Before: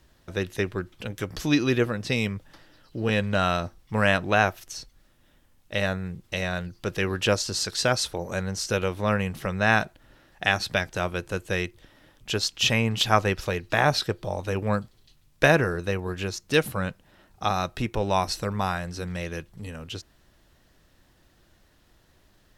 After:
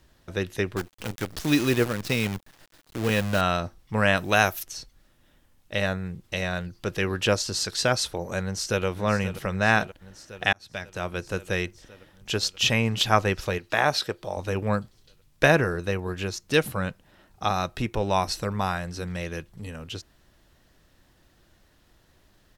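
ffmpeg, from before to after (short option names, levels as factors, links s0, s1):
-filter_complex "[0:a]asettb=1/sr,asplit=3[s0][s1][s2];[s0]atrim=end=0.764[s3];[s1]atrim=start=0.76:end=3.41,asetpts=PTS-STARTPTS,afade=t=in:d=0.004:c=qsin,afade=t=out:st=2.646:d=0.004:c=qsin,acrusher=bits=6:dc=4:mix=0:aa=0.000001[s4];[s2]atrim=start=3.406[s5];[s3][s4]acrossfade=d=0.004:c1=hsin:c2=qsin[s6];[s6][s5]acrossfade=d=0.004:c1=qsin:c2=hsin,asettb=1/sr,asplit=3[s7][s8][s9];[s7]atrim=end=4.174[s10];[s8]atrim=start=4.17:end=4.63,asetpts=PTS-STARTPTS,afade=t=in:d=0.004:c=qsin,afade=t=out:st=0.456:d=0.004:c=qsin,aemphasis=mode=production:type=75fm[s11];[s9]atrim=start=4.626[s12];[s10][s11]acrossfade=d=0.004:c1=hsin:c2=qsin[s13];[s13][s12]acrossfade=d=0.004:c1=qsin:c2=hsin,asplit=2[s14][s15];[s15]afade=t=in:st=8.42:d=0.01,afade=t=out:st=8.85:d=0.01,aecho=0:1:530|1060|1590|2120|2650|3180|3710|4240|4770|5300|5830|6360:0.251189|0.188391|0.141294|0.10597|0.0794777|0.0596082|0.0447062|0.0335296|0.0251472|0.0188604|0.0141453|0.010609[s16];[s14][s16]amix=inputs=2:normalize=0,asettb=1/sr,asplit=3[s17][s18][s19];[s17]atrim=end=13.584[s20];[s18]atrim=start=13.58:end=14.37,asetpts=PTS-STARTPTS,afade=t=in:d=0.004:c=qsin,afade=t=out:st=0.786:d=0.004:c=qsin,lowshelf=f=200:g=-11[s21];[s19]atrim=start=14.366[s22];[s20][s21]acrossfade=d=0.004:c1=hsin:c2=qsin[s23];[s23][s22]acrossfade=d=0.004:c1=qsin:c2=hsin,asplit=2[s24][s25];[s24]atrim=end=10.53,asetpts=PTS-STARTPTS,afade=t=out:st=10.526:d=0.004:c=hsin[s26];[s25]atrim=start=10.53,asetpts=PTS-STARTPTS,afade=t=in:d=0.76[s27];[s26][s27]concat=n=2:v=0:a=1"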